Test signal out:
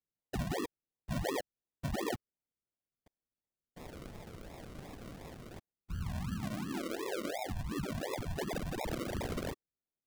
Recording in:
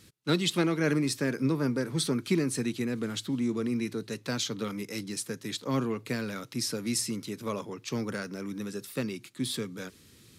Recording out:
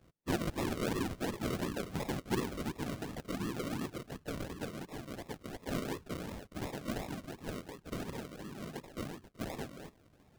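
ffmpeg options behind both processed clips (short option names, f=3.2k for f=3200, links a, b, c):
-af "afftfilt=real='hypot(re,im)*cos(2*PI*random(0))':imag='hypot(re,im)*sin(2*PI*random(1))':win_size=512:overlap=0.75,acrusher=samples=41:mix=1:aa=0.000001:lfo=1:lforange=24.6:lforate=2.8,volume=-2dB"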